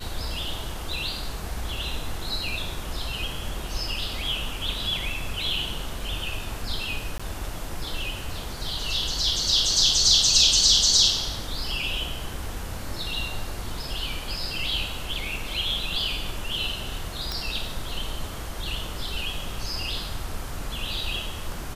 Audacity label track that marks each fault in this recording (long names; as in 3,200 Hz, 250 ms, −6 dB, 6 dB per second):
7.180000	7.200000	drop-out 15 ms
17.320000	17.320000	click